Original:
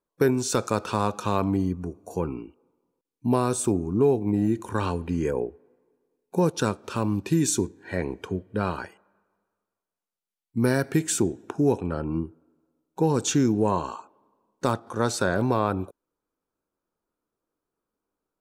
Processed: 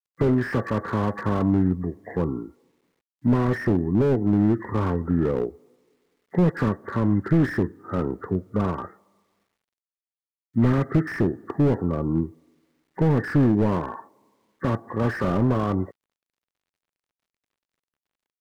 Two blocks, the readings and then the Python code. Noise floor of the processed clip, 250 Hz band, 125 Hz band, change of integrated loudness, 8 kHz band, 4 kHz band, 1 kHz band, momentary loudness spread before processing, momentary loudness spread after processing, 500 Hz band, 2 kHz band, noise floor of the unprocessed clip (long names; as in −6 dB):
below −85 dBFS, +3.5 dB, +5.0 dB, +2.0 dB, below −20 dB, can't be measured, −1.5 dB, 11 LU, 9 LU, −0.5 dB, +1.5 dB, below −85 dBFS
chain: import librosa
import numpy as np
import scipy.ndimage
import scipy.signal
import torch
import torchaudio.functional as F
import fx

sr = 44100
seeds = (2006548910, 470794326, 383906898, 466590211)

y = fx.freq_compress(x, sr, knee_hz=1100.0, ratio=4.0)
y = scipy.signal.sosfilt(scipy.signal.butter(2, 83.0, 'highpass', fs=sr, output='sos'), y)
y = fx.low_shelf(y, sr, hz=390.0, db=7.0)
y = fx.quant_dither(y, sr, seeds[0], bits=12, dither='none')
y = fx.slew_limit(y, sr, full_power_hz=46.0)